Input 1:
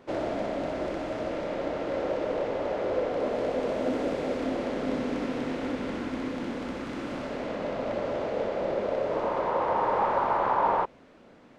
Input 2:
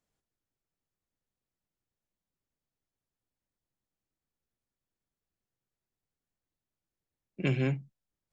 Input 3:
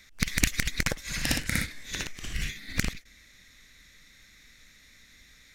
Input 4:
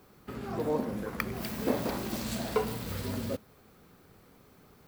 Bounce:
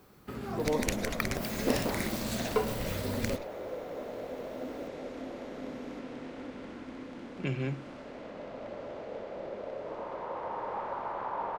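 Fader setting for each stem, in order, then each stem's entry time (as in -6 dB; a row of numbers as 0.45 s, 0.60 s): -11.0 dB, -4.5 dB, -9.0 dB, 0.0 dB; 0.75 s, 0.00 s, 0.45 s, 0.00 s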